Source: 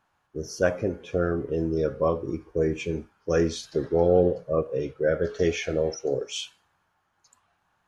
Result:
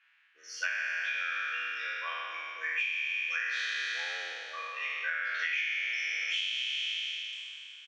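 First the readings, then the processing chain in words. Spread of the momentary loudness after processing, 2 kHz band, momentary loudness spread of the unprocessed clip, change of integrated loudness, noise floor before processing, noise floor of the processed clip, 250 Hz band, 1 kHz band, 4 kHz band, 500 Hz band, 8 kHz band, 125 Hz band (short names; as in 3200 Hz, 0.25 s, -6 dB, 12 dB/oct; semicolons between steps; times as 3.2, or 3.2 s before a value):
8 LU, +9.0 dB, 11 LU, -5.5 dB, -73 dBFS, -62 dBFS, under -40 dB, -5.5 dB, +6.5 dB, -31.0 dB, -7.0 dB, under -40 dB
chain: spectral trails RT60 2.96 s; Butterworth band-pass 2200 Hz, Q 2; tilt +4.5 dB/oct; comb 6.1 ms, depth 34%; compressor 16:1, threshold -36 dBFS, peak gain reduction 15.5 dB; gain +7 dB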